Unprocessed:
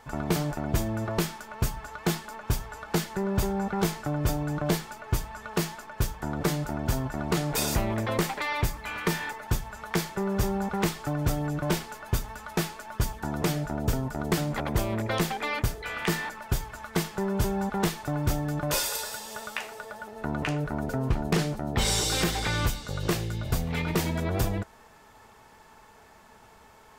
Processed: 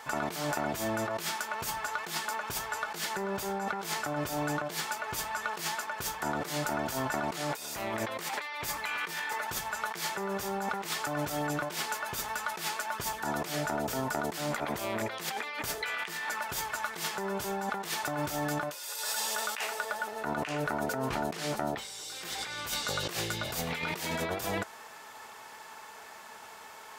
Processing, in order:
high-pass filter 960 Hz 6 dB per octave
compressor whose output falls as the input rises −40 dBFS, ratio −1
level +5.5 dB

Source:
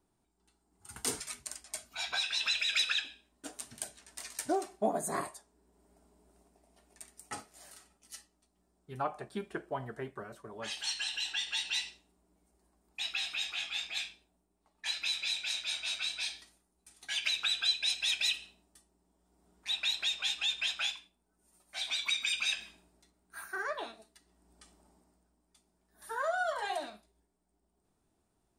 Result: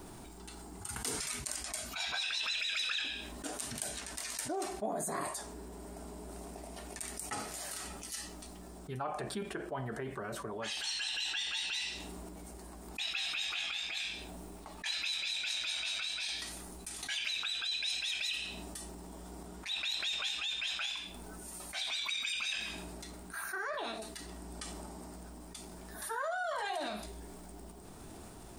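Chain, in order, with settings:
transient designer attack +2 dB, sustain +6 dB
sample-and-hold tremolo
envelope flattener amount 70%
level −8 dB

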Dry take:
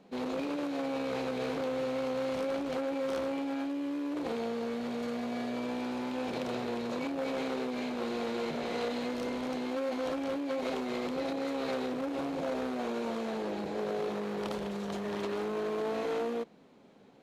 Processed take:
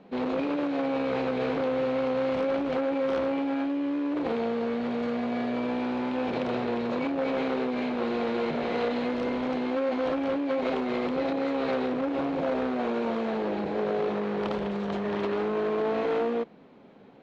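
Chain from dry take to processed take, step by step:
low-pass filter 3,100 Hz 12 dB per octave
level +6 dB

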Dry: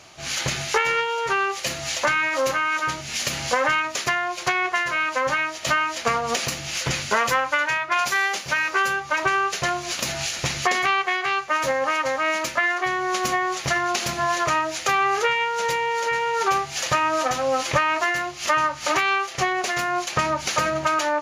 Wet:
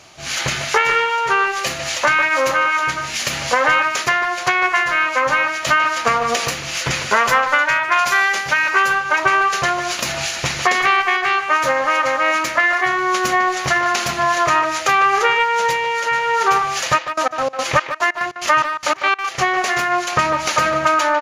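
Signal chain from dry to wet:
0:16.97–0:19.34: gate pattern "x.xx..x." 145 BPM −24 dB
far-end echo of a speakerphone 150 ms, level −7 dB
dynamic equaliser 1,400 Hz, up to +4 dB, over −35 dBFS, Q 0.7
level +2.5 dB

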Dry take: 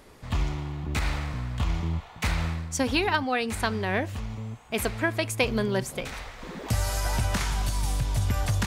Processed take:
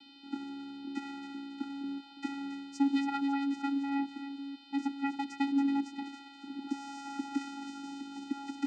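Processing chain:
feedback echo with a high-pass in the loop 276 ms, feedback 39%, high-pass 1,200 Hz, level −7.5 dB
steady tone 3,100 Hz −41 dBFS
channel vocoder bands 8, square 278 Hz
level −5 dB

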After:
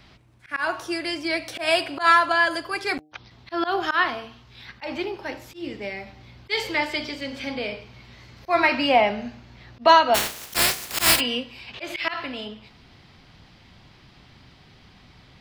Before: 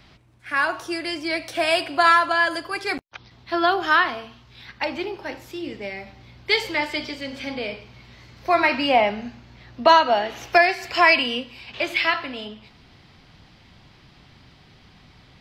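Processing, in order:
0:10.14–0:11.19: compressing power law on the bin magnitudes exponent 0.15
hum removal 152.6 Hz, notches 5
volume swells 111 ms

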